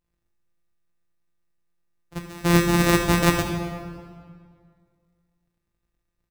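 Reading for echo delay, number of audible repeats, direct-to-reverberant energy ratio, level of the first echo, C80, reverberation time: 76 ms, 1, 3.0 dB, -13.0 dB, 6.5 dB, 2.0 s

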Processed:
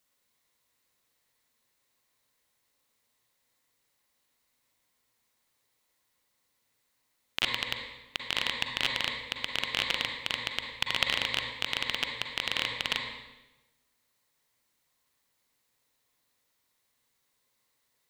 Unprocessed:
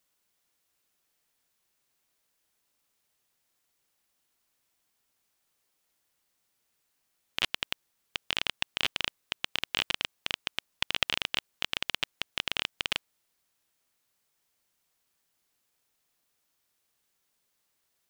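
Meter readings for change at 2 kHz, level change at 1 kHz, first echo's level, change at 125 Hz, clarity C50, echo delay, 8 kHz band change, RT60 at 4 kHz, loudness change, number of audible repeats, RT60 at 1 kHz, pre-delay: +2.5 dB, +3.0 dB, no echo, +3.5 dB, 1.5 dB, no echo, 0.0 dB, 0.95 s, +1.5 dB, no echo, 1.0 s, 37 ms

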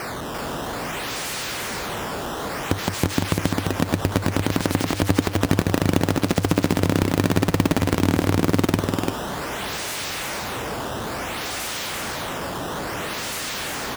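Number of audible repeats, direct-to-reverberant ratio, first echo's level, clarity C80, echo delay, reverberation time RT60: 1, no reverb, -3.5 dB, no reverb, 344 ms, no reverb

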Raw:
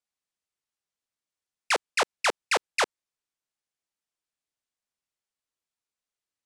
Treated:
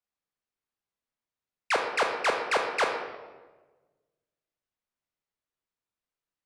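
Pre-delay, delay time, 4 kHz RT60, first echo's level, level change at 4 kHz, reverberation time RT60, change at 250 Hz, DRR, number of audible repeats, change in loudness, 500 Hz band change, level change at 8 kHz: 29 ms, no echo, 0.85 s, no echo, -4.0 dB, 1.3 s, +2.0 dB, 2.5 dB, no echo, -0.5 dB, +2.0 dB, -8.0 dB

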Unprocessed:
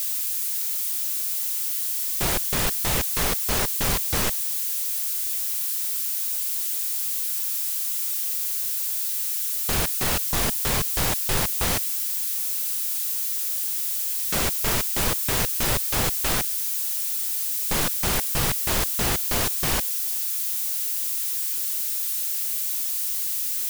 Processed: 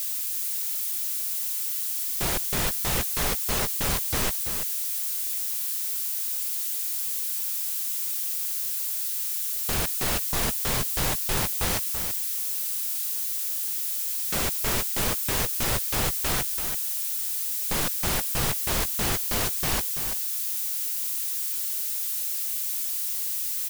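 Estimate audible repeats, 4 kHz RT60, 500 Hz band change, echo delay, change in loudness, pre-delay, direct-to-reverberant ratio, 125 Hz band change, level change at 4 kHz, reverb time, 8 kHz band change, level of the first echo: 1, no reverb, -2.5 dB, 335 ms, -2.5 dB, no reverb, no reverb, -2.5 dB, -2.5 dB, no reverb, -2.5 dB, -8.5 dB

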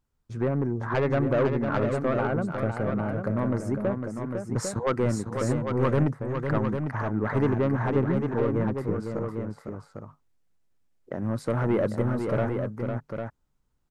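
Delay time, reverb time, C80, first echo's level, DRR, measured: 503 ms, no reverb, no reverb, -6.5 dB, no reverb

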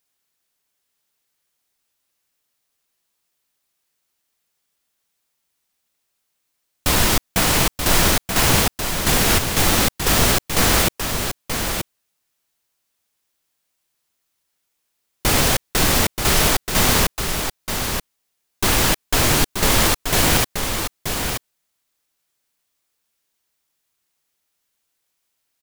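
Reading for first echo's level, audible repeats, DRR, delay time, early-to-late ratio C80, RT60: -6.5 dB, 1, no reverb, 930 ms, no reverb, no reverb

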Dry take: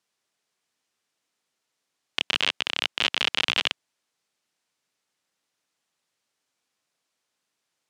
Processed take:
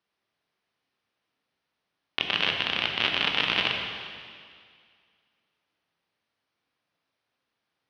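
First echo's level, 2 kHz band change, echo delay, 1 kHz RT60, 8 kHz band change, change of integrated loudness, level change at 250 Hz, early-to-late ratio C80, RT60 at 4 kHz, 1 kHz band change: no echo, +0.5 dB, no echo, 2.1 s, under -10 dB, -0.5 dB, +3.5 dB, 4.5 dB, 2.1 s, +2.0 dB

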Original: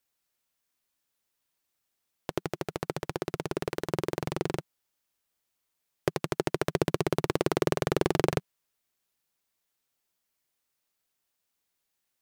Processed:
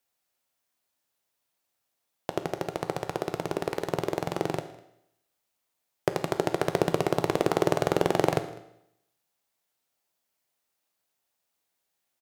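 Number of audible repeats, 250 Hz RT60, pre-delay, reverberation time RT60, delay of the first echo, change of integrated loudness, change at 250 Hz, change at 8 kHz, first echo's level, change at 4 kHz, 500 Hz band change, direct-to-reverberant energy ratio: 1, 0.80 s, 12 ms, 0.75 s, 202 ms, +2.5 dB, +1.0 dB, +0.5 dB, -23.5 dB, +0.5 dB, +3.0 dB, 8.5 dB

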